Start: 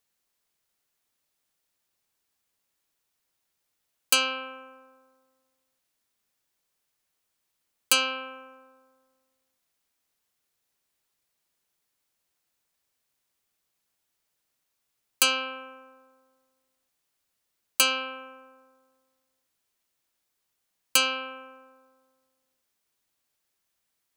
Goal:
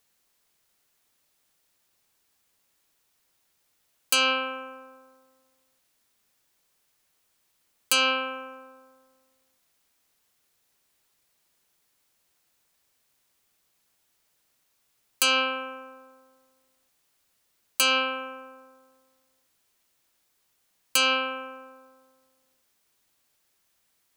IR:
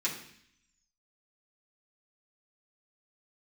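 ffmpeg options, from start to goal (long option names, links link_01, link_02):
-af "alimiter=limit=-16dB:level=0:latency=1:release=171,volume=7.5dB"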